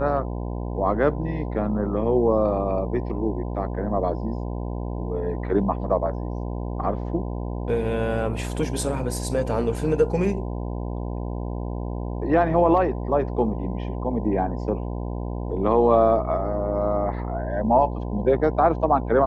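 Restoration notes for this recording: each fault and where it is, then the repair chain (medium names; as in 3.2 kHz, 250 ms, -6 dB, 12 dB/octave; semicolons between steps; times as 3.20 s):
buzz 60 Hz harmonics 17 -29 dBFS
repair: de-hum 60 Hz, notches 17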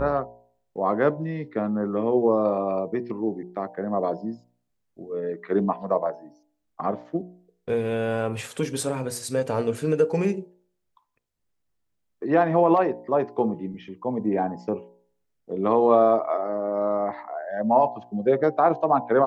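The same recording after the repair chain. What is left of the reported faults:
nothing left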